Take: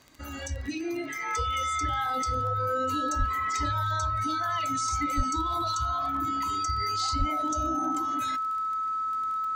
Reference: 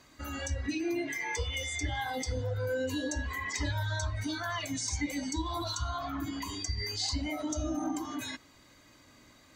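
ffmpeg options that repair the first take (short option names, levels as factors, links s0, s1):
-filter_complex "[0:a]adeclick=t=4,bandreject=f=1300:w=30,asplit=3[s0][s1][s2];[s0]afade=t=out:st=3.18:d=0.02[s3];[s1]highpass=f=140:w=0.5412,highpass=f=140:w=1.3066,afade=t=in:st=3.18:d=0.02,afade=t=out:st=3.3:d=0.02[s4];[s2]afade=t=in:st=3.3:d=0.02[s5];[s3][s4][s5]amix=inputs=3:normalize=0,asplit=3[s6][s7][s8];[s6]afade=t=out:st=5.16:d=0.02[s9];[s7]highpass=f=140:w=0.5412,highpass=f=140:w=1.3066,afade=t=in:st=5.16:d=0.02,afade=t=out:st=5.28:d=0.02[s10];[s8]afade=t=in:st=5.28:d=0.02[s11];[s9][s10][s11]amix=inputs=3:normalize=0,asplit=3[s12][s13][s14];[s12]afade=t=out:st=7.18:d=0.02[s15];[s13]highpass=f=140:w=0.5412,highpass=f=140:w=1.3066,afade=t=in:st=7.18:d=0.02,afade=t=out:st=7.3:d=0.02[s16];[s14]afade=t=in:st=7.3:d=0.02[s17];[s15][s16][s17]amix=inputs=3:normalize=0"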